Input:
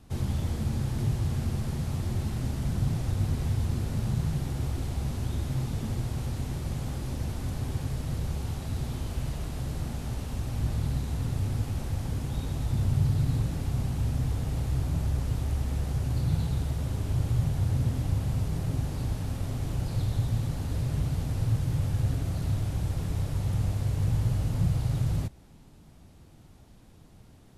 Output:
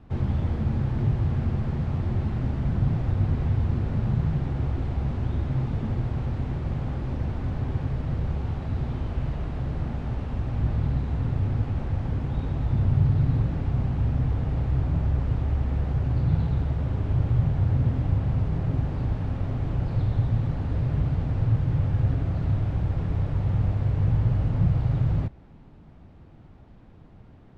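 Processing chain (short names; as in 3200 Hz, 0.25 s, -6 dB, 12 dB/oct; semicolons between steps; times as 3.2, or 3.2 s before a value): LPF 2100 Hz 12 dB/oct; gain +4 dB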